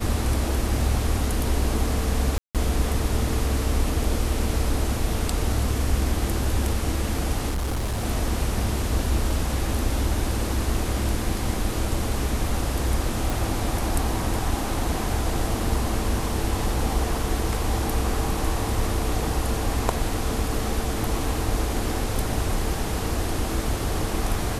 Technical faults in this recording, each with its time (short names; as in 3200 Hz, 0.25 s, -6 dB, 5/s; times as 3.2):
2.38–2.55 gap 0.167 s
7.49–8.05 clipped -22.5 dBFS
13.3 pop